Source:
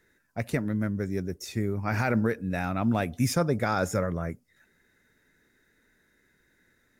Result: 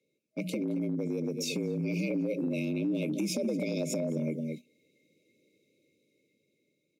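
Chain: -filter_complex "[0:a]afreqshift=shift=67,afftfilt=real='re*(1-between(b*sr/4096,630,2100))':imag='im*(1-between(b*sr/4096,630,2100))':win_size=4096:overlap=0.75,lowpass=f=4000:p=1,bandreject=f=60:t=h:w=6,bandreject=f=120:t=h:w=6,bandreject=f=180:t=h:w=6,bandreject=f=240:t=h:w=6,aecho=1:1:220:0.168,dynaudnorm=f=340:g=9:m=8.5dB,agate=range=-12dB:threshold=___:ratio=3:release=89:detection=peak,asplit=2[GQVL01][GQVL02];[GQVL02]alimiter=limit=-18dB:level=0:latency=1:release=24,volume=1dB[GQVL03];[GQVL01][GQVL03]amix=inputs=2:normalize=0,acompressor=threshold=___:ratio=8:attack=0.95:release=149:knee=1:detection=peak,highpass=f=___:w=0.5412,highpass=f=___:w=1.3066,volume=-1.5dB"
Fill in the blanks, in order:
-49dB, -25dB, 140, 140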